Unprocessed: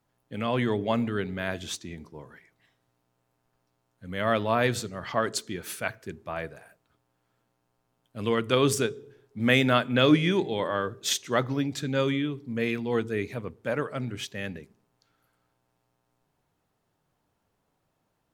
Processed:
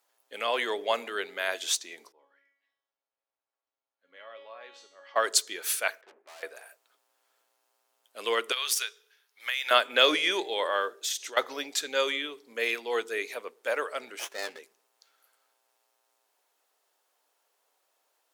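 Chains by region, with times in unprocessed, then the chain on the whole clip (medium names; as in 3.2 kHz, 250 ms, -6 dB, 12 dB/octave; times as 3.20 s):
2.12–5.16 s: feedback comb 280 Hz, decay 0.61 s, mix 90% + compression 2:1, threshold -45 dBFS + distance through air 190 m
6.01–6.43 s: low-pass 2.1 kHz 24 dB/octave + valve stage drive 49 dB, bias 0.75
8.52–9.71 s: high-pass 1.5 kHz + peaking EQ 7.8 kHz -9 dB 0.37 oct + compression, threshold -30 dBFS
10.90–11.37 s: band-stop 1.1 kHz, Q 8.2 + compression, threshold -36 dBFS
14.19–14.59 s: treble shelf 6.7 kHz -7.5 dB + doubling 13 ms -7 dB + sliding maximum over 9 samples
whole clip: high-pass 440 Hz 24 dB/octave; treble shelf 2.7 kHz +10 dB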